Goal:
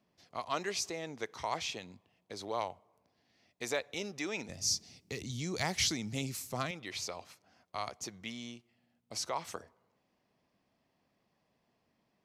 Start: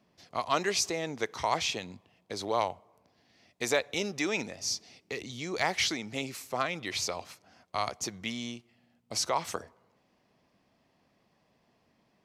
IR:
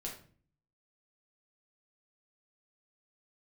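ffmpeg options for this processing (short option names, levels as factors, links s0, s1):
-filter_complex "[0:a]asettb=1/sr,asplit=3[s0][s1][s2];[s0]atrim=end=4.494[s3];[s1]atrim=start=4.49:end=6.71,asetpts=PTS-STARTPTS,afade=t=in:d=0.004:c=qsin,afade=t=out:st=2.216:d=0.004:c=qsin,bass=f=250:g=14,treble=f=4000:g=10[s4];[s2]atrim=start=6.706[s5];[s3][s4]acrossfade=d=0.004:c1=hsin:c2=qsin[s6];[s6][s5]acrossfade=d=0.004:c1=qsin:c2=hsin,volume=0.447"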